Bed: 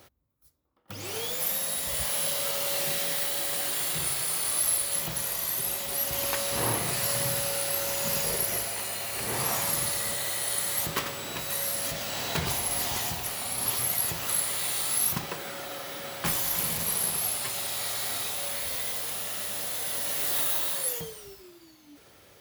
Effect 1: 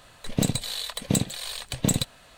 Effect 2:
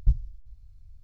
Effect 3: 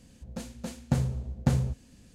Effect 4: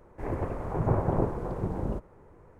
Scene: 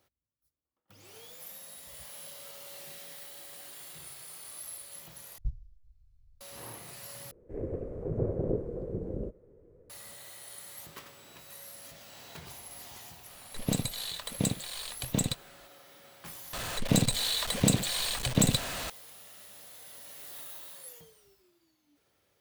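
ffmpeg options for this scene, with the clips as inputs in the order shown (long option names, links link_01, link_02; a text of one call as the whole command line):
ffmpeg -i bed.wav -i cue0.wav -i cue1.wav -i cue2.wav -i cue3.wav -filter_complex "[1:a]asplit=2[link_01][link_02];[0:a]volume=-17.5dB[link_03];[4:a]lowshelf=frequency=660:width_type=q:width=3:gain=10[link_04];[link_02]aeval=exprs='val(0)+0.5*0.0335*sgn(val(0))':channel_layout=same[link_05];[link_03]asplit=4[link_06][link_07][link_08][link_09];[link_06]atrim=end=5.384[link_10];[2:a]atrim=end=1.03,asetpts=PTS-STARTPTS,volume=-12.5dB[link_11];[link_07]atrim=start=6.406:end=7.314[link_12];[link_04]atrim=end=2.59,asetpts=PTS-STARTPTS,volume=-16.5dB[link_13];[link_08]atrim=start=9.896:end=16.534[link_14];[link_05]atrim=end=2.37,asetpts=PTS-STARTPTS,volume=-2dB[link_15];[link_09]atrim=start=18.896[link_16];[link_01]atrim=end=2.37,asetpts=PTS-STARTPTS,volume=-6dB,afade=type=in:duration=0.004:curve=hsin,afade=type=out:start_time=2.366:duration=0.004:curve=hsin,adelay=13300[link_17];[link_10][link_11]acrossfade=duration=0.004:curve1=hsin:curve2=hsin[link_18];[link_18][link_12]acrossfade=duration=0.004:curve1=hsin:curve2=hsin[link_19];[link_19][link_13]acrossfade=duration=0.004:curve1=hsin:curve2=hsin[link_20];[link_20][link_14]acrossfade=duration=0.004:curve1=hsin:curve2=hsin[link_21];[link_21][link_15]acrossfade=duration=0.004:curve1=hsin:curve2=hsin[link_22];[link_22][link_16]acrossfade=duration=0.004:curve1=hsin:curve2=hsin[link_23];[link_23][link_17]amix=inputs=2:normalize=0" out.wav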